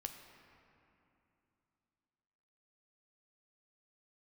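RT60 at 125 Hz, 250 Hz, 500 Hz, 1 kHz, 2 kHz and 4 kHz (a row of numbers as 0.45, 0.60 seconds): 3.4, 3.5, 2.9, 2.9, 2.5, 1.7 seconds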